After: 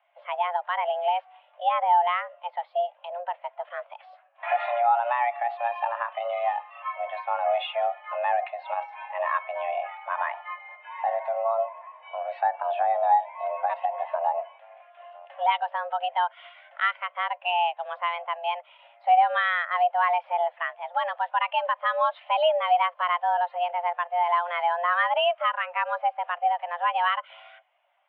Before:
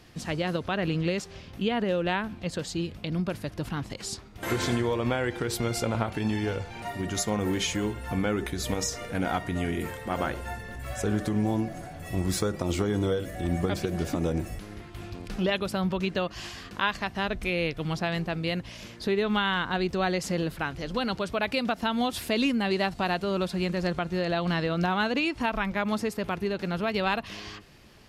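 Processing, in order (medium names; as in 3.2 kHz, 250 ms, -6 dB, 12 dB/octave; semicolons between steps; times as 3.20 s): in parallel at -2 dB: peak limiter -20 dBFS, peak gain reduction 9 dB; on the sum: mistuned SSB +350 Hz 270–2900 Hz; spectral contrast expander 1.5:1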